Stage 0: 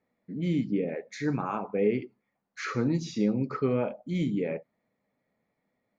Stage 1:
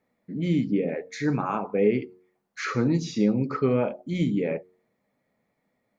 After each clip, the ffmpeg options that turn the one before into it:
-af "bandreject=f=91.24:t=h:w=4,bandreject=f=182.48:t=h:w=4,bandreject=f=273.72:t=h:w=4,bandreject=f=364.96:t=h:w=4,bandreject=f=456.2:t=h:w=4,volume=1.58"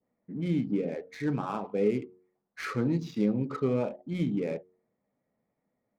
-af "adynamicsmooth=sensitivity=8:basefreq=1700,adynamicequalizer=threshold=0.00562:dfrequency=1700:dqfactor=0.98:tfrequency=1700:tqfactor=0.98:attack=5:release=100:ratio=0.375:range=2.5:mode=cutabove:tftype=bell,volume=0.596"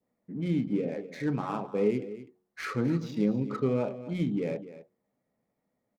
-af "aecho=1:1:251:0.188"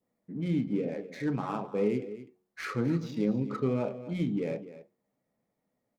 -af "flanger=delay=5.6:depth=4.4:regen=-83:speed=0.37:shape=triangular,volume=1.5"

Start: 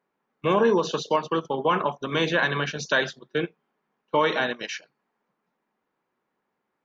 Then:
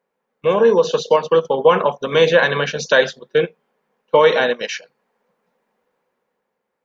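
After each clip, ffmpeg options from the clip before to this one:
-af "equalizer=f=125:t=o:w=0.33:g=-7,equalizer=f=315:t=o:w=0.33:g=-9,equalizer=f=500:t=o:w=0.33:g=10,equalizer=f=1250:t=o:w=0.33:g=-3,dynaudnorm=f=100:g=17:m=2.24,volume=1.19"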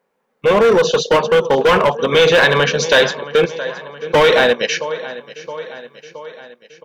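-filter_complex "[0:a]aecho=1:1:670|1340|2010|2680|3350:0.126|0.073|0.0424|0.0246|0.0142,acrossover=split=2300[s0][s1];[s0]volume=5.96,asoftclip=hard,volume=0.168[s2];[s2][s1]amix=inputs=2:normalize=0,volume=2.11"

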